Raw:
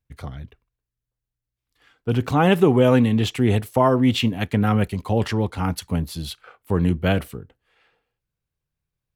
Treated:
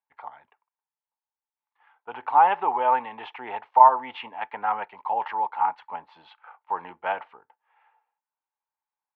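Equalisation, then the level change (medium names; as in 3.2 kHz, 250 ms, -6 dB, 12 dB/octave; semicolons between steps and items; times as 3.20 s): resonant high-pass 880 Hz, resonance Q 11; low-pass 2.5 kHz 24 dB/octave; -7.0 dB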